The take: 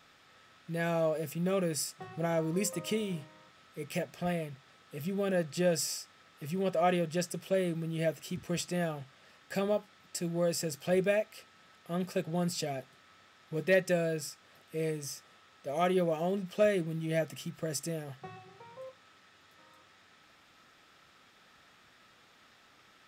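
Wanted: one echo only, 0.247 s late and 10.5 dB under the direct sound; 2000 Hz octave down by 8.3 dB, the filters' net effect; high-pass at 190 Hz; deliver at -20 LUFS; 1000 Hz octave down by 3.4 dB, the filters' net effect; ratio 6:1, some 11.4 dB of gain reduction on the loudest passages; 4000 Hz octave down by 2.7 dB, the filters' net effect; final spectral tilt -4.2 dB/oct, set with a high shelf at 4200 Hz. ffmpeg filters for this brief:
-af "highpass=190,equalizer=f=1k:t=o:g=-4,equalizer=f=2k:t=o:g=-9,equalizer=f=4k:t=o:g=-8,highshelf=f=4.2k:g=8.5,acompressor=threshold=-37dB:ratio=6,aecho=1:1:247:0.299,volume=21.5dB"

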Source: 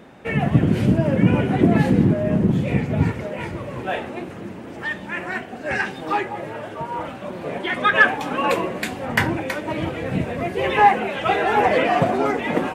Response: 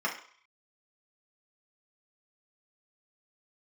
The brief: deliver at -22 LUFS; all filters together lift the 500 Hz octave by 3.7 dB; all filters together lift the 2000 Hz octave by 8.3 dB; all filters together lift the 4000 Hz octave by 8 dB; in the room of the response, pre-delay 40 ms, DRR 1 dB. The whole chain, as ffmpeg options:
-filter_complex "[0:a]equalizer=f=500:t=o:g=4,equalizer=f=2k:t=o:g=8.5,equalizer=f=4k:t=o:g=7,asplit=2[a][b];[1:a]atrim=start_sample=2205,adelay=40[c];[b][c]afir=irnorm=-1:irlink=0,volume=-10dB[d];[a][d]amix=inputs=2:normalize=0,volume=-8dB"

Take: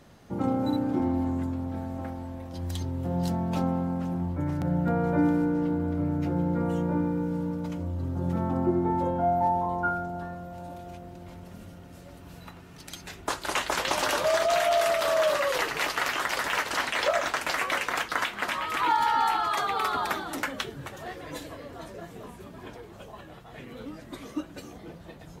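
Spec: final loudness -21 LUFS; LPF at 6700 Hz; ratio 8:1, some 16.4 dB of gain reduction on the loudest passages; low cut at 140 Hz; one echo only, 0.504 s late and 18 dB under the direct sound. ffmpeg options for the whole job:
-af "highpass=140,lowpass=6.7k,acompressor=threshold=-38dB:ratio=8,aecho=1:1:504:0.126,volume=21dB"

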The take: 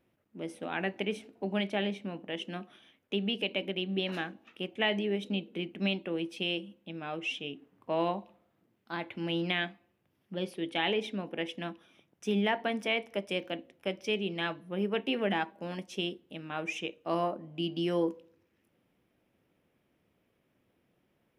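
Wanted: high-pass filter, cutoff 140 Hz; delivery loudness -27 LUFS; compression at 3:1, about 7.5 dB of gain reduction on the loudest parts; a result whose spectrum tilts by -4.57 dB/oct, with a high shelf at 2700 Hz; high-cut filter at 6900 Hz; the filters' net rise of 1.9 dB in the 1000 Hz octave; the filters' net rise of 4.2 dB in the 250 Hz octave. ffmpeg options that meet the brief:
-af "highpass=140,lowpass=6.9k,equalizer=f=250:t=o:g=7,equalizer=f=1k:t=o:g=3,highshelf=f=2.7k:g=-7.5,acompressor=threshold=-32dB:ratio=3,volume=10dB"

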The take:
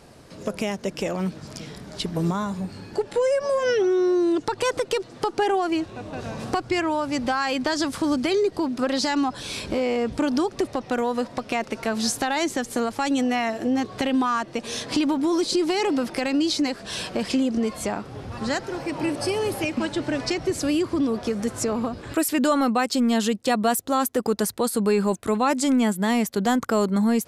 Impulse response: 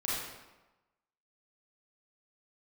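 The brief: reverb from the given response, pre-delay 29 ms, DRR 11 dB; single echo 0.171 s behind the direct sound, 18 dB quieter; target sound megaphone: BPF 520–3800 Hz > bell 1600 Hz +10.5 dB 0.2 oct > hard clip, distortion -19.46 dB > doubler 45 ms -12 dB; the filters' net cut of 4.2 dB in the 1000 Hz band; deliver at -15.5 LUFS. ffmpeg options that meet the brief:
-filter_complex "[0:a]equalizer=f=1k:t=o:g=-5.5,aecho=1:1:171:0.126,asplit=2[a][b];[1:a]atrim=start_sample=2205,adelay=29[c];[b][c]afir=irnorm=-1:irlink=0,volume=-17dB[d];[a][d]amix=inputs=2:normalize=0,highpass=520,lowpass=3.8k,equalizer=f=1.6k:t=o:w=0.2:g=10.5,asoftclip=type=hard:threshold=-19dB,asplit=2[e][f];[f]adelay=45,volume=-12dB[g];[e][g]amix=inputs=2:normalize=0,volume=14dB"

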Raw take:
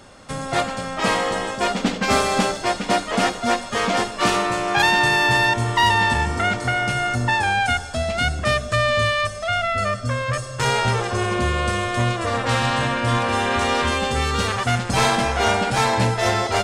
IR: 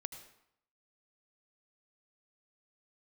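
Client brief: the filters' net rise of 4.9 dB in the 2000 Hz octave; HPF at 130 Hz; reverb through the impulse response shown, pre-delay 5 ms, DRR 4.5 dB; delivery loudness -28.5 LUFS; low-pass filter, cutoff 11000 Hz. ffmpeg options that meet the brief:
-filter_complex "[0:a]highpass=130,lowpass=11k,equalizer=f=2k:t=o:g=6,asplit=2[a][b];[1:a]atrim=start_sample=2205,adelay=5[c];[b][c]afir=irnorm=-1:irlink=0,volume=-2dB[d];[a][d]amix=inputs=2:normalize=0,volume=-12.5dB"

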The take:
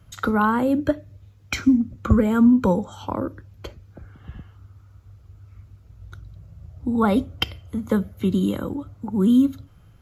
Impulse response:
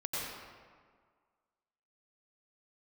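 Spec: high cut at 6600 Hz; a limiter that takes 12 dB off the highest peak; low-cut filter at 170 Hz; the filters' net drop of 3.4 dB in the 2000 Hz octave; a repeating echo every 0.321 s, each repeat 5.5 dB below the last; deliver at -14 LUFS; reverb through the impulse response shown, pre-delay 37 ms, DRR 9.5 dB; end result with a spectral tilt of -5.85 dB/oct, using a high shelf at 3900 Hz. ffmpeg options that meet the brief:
-filter_complex "[0:a]highpass=170,lowpass=6.6k,equalizer=f=2k:t=o:g=-7.5,highshelf=f=3.9k:g=8.5,alimiter=limit=-18.5dB:level=0:latency=1,aecho=1:1:321|642|963|1284|1605|1926|2247:0.531|0.281|0.149|0.079|0.0419|0.0222|0.0118,asplit=2[a][b];[1:a]atrim=start_sample=2205,adelay=37[c];[b][c]afir=irnorm=-1:irlink=0,volume=-14dB[d];[a][d]amix=inputs=2:normalize=0,volume=13dB"

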